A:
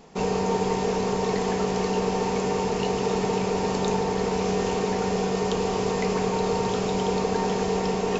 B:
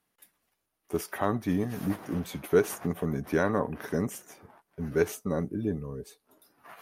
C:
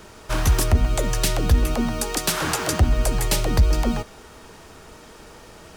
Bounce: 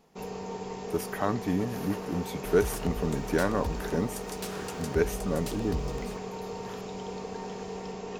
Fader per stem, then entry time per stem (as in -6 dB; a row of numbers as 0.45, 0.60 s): -13.0, -0.5, -17.5 dB; 0.00, 0.00, 2.15 s